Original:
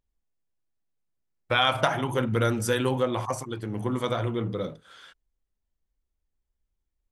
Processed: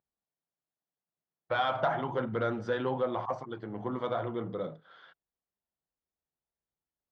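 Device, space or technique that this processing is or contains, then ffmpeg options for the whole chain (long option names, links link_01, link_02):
overdrive pedal into a guitar cabinet: -filter_complex "[0:a]asplit=2[link_01][link_02];[link_02]highpass=frequency=720:poles=1,volume=14dB,asoftclip=type=tanh:threshold=-7.5dB[link_03];[link_01][link_03]amix=inputs=2:normalize=0,lowpass=frequency=1100:poles=1,volume=-6dB,highpass=82,equalizer=frequency=160:width_type=q:width=4:gain=7,equalizer=frequency=700:width_type=q:width=4:gain=4,equalizer=frequency=2500:width_type=q:width=4:gain=-8,lowpass=frequency=4500:width=0.5412,lowpass=frequency=4500:width=1.3066,volume=-8dB"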